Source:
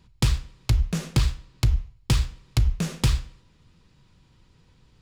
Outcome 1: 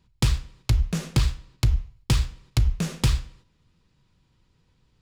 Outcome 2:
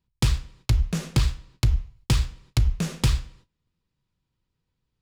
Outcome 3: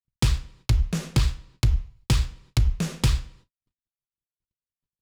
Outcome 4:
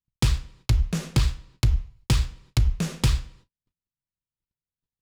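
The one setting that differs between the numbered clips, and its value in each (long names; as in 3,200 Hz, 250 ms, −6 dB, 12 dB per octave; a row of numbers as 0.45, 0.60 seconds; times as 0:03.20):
noise gate, range: −7, −21, −57, −42 decibels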